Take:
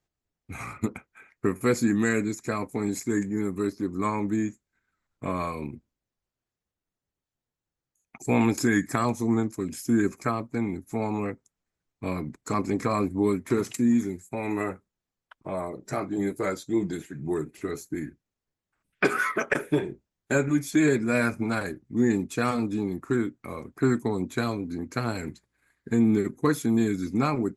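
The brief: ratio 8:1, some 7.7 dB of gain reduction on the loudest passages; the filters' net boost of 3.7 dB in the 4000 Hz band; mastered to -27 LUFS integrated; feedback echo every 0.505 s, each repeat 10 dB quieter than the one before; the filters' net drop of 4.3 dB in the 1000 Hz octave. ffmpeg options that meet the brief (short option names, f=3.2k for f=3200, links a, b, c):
-af "equalizer=f=1k:t=o:g=-6,equalizer=f=4k:t=o:g=4.5,acompressor=threshold=-26dB:ratio=8,aecho=1:1:505|1010|1515|2020:0.316|0.101|0.0324|0.0104,volume=5.5dB"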